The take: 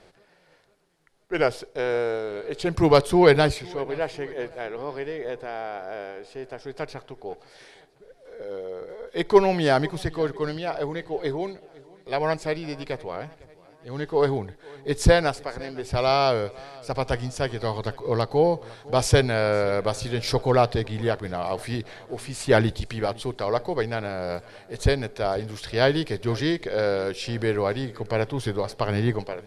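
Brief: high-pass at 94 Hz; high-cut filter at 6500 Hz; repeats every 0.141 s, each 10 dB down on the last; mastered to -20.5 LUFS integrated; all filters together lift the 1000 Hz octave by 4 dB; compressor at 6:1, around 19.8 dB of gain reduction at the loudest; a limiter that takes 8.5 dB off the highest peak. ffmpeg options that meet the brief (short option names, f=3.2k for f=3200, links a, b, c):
-af "highpass=94,lowpass=6.5k,equalizer=f=1k:t=o:g=5.5,acompressor=threshold=-31dB:ratio=6,alimiter=level_in=1dB:limit=-24dB:level=0:latency=1,volume=-1dB,aecho=1:1:141|282|423|564:0.316|0.101|0.0324|0.0104,volume=16.5dB"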